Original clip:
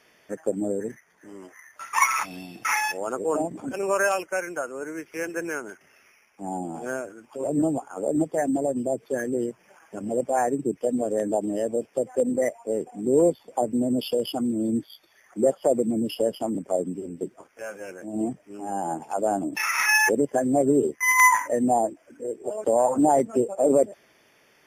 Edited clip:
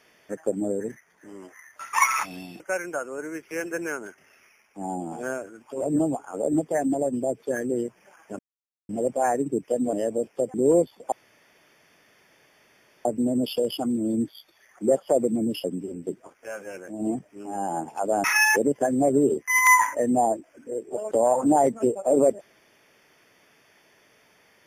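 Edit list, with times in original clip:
0:02.60–0:04.23: remove
0:10.02: splice in silence 0.50 s
0:11.06–0:11.51: remove
0:12.12–0:13.02: remove
0:13.60: splice in room tone 1.93 s
0:16.19–0:16.78: remove
0:19.38–0:19.77: remove

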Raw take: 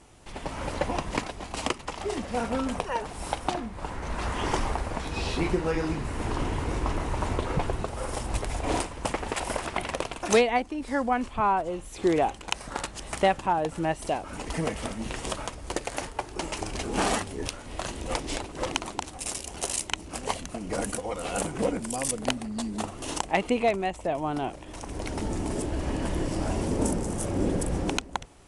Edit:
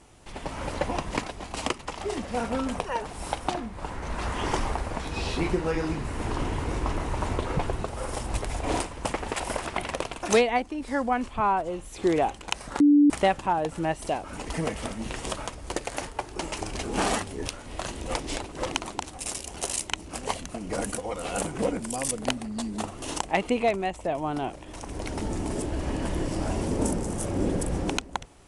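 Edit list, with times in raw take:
0:12.80–0:13.10: beep over 291 Hz −13.5 dBFS

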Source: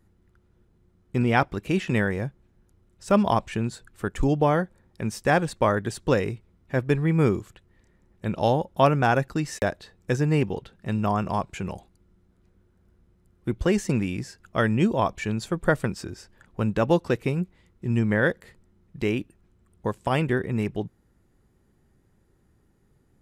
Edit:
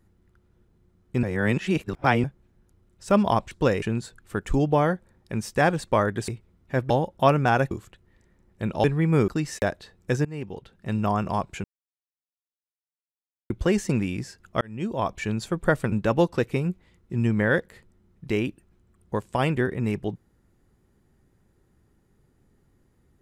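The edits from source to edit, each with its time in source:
0:01.23–0:02.24: reverse
0:05.97–0:06.28: move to 0:03.51
0:06.90–0:07.34: swap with 0:08.47–0:09.28
0:10.25–0:10.96: fade in, from −20.5 dB
0:11.64–0:13.50: silence
0:14.61–0:15.19: fade in linear
0:15.92–0:16.64: remove

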